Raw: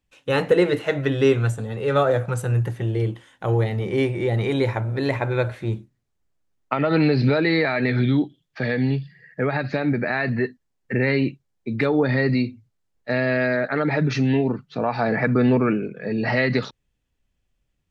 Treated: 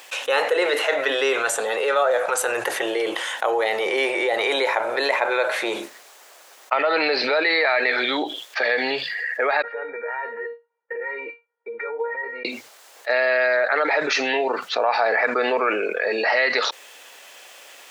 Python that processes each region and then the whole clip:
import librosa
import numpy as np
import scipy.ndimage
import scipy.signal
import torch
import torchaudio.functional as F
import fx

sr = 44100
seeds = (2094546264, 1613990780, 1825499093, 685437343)

y = fx.chain(x, sr, fx.lowpass(hz=1700.0, slope=24),
    fx.level_steps(step_db=17),
    fx.comb_fb(f0_hz=470.0, decay_s=0.21, harmonics='all', damping=0.0, mix_pct=100), at=(9.62, 12.45))
y = scipy.signal.sosfilt(scipy.signal.butter(4, 540.0, 'highpass', fs=sr, output='sos'), y)
y = fx.env_flatten(y, sr, amount_pct=70)